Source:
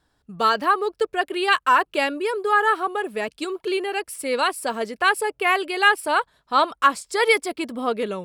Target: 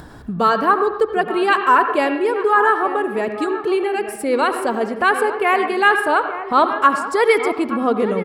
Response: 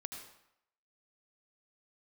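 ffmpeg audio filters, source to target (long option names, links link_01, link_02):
-filter_complex "[0:a]equalizer=frequency=180:width_type=o:width=2:gain=5,acompressor=mode=upward:threshold=-24dB:ratio=2.5,asplit=2[link_01][link_02];[link_02]adelay=874.6,volume=-12dB,highshelf=frequency=4000:gain=-19.7[link_03];[link_01][link_03]amix=inputs=2:normalize=0,asplit=2[link_04][link_05];[1:a]atrim=start_sample=2205,lowpass=2100[link_06];[link_05][link_06]afir=irnorm=-1:irlink=0,volume=5dB[link_07];[link_04][link_07]amix=inputs=2:normalize=0,volume=-2.5dB"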